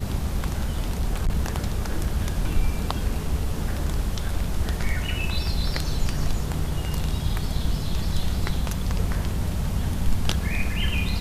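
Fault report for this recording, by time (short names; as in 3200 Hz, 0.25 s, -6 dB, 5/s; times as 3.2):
0.77–1.46 clipped -17.5 dBFS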